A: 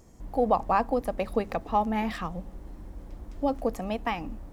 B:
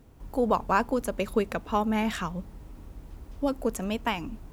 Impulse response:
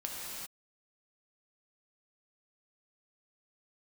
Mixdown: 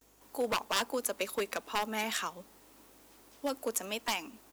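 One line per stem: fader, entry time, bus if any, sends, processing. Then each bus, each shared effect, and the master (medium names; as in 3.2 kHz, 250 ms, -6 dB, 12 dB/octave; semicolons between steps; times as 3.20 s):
-13.5 dB, 0.00 s, no send, elliptic high-pass 980 Hz
-4.5 dB, 11 ms, polarity flipped, no send, Bessel high-pass 370 Hz, order 6; wavefolder -21 dBFS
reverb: none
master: hum 50 Hz, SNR 34 dB; treble shelf 3.2 kHz +11.5 dB; gate with hold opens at -55 dBFS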